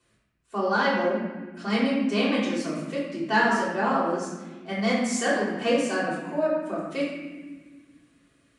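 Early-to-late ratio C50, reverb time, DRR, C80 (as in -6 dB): 0.5 dB, 1.4 s, -7.5 dB, 3.0 dB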